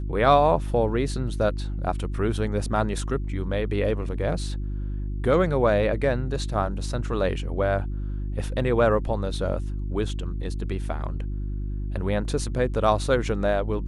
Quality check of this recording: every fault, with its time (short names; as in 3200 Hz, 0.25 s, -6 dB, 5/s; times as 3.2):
hum 50 Hz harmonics 7 -29 dBFS